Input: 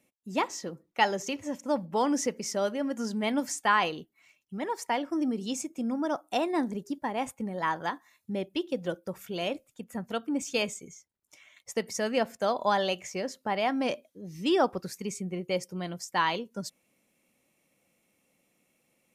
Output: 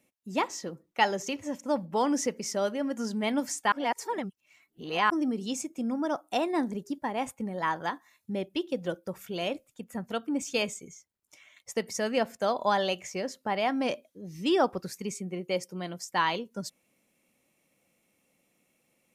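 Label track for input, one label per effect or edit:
3.720000	5.100000	reverse
15.120000	16.050000	HPF 160 Hz

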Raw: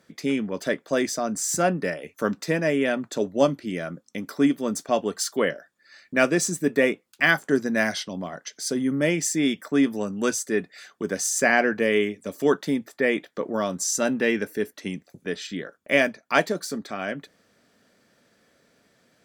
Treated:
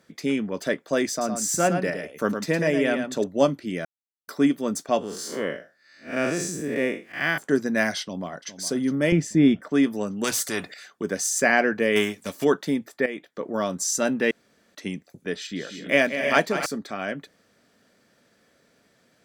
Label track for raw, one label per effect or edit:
1.100000	3.240000	echo 0.11 s -7 dB
3.850000	4.280000	mute
4.990000	7.380000	time blur width 0.151 s
8.010000	8.510000	echo throw 0.41 s, feedback 50%, level -13 dB
9.120000	9.710000	RIAA curve playback
10.240000	10.740000	spectral compressor 2:1
11.950000	12.430000	spectral whitening exponent 0.6
13.060000	13.620000	fade in, from -12.5 dB
14.310000	14.750000	room tone
15.360000	16.660000	tapped delay 0.192/0.253/0.301/0.324/0.68 s -10/-13.5/-10.5/-9/-16.5 dB

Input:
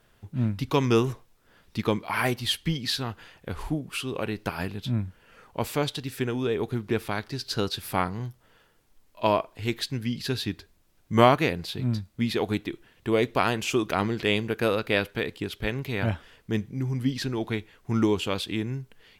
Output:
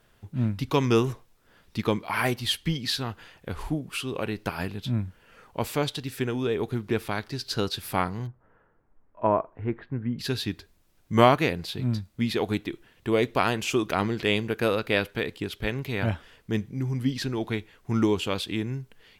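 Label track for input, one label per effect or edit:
8.270000	10.190000	LPF 1600 Hz 24 dB/oct

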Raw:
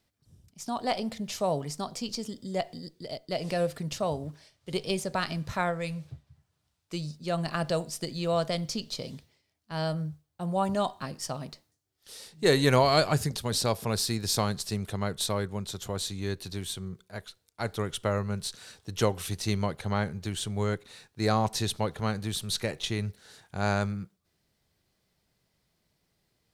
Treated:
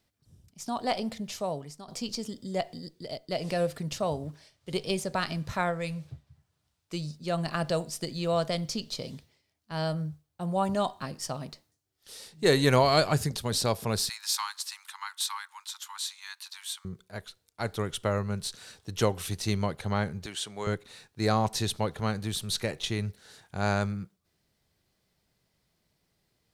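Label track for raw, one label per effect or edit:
1.090000	1.880000	fade out, to -14 dB
14.090000	16.850000	steep high-pass 860 Hz 96 dB/oct
20.260000	20.670000	weighting filter A

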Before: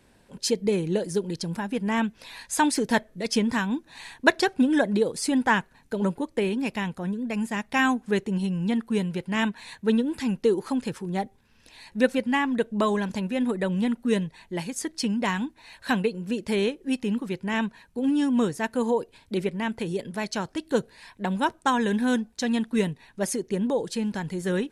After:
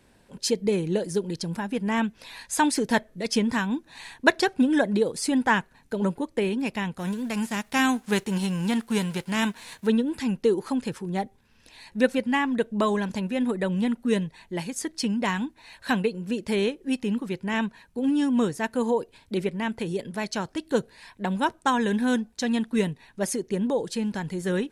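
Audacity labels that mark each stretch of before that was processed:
6.980000	9.860000	spectral whitening exponent 0.6

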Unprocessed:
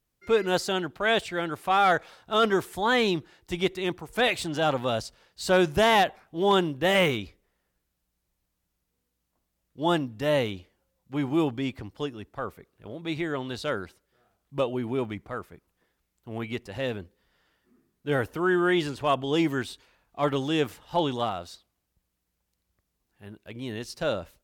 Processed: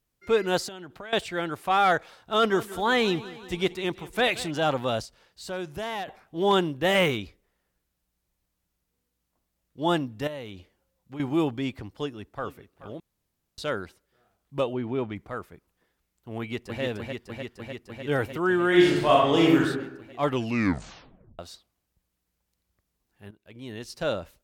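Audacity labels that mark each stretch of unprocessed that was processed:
0.680000	1.130000	compressor 20:1, threshold -36 dBFS
2.360000	4.510000	feedback echo 0.178 s, feedback 59%, level -17.5 dB
5.050000	6.080000	compressor 1.5:1, threshold -52 dBFS
10.270000	11.200000	compressor 3:1, threshold -38 dBFS
11.910000	12.460000	echo throw 0.43 s, feedback 35%, level -15 dB
13.000000	13.580000	room tone
14.730000	15.160000	air absorption 120 m
16.390000	16.820000	echo throw 0.3 s, feedback 85%, level -3 dB
18.680000	19.600000	reverb throw, RT60 0.87 s, DRR -4 dB
20.270000	20.270000	tape stop 1.12 s
23.310000	24.060000	fade in, from -12.5 dB

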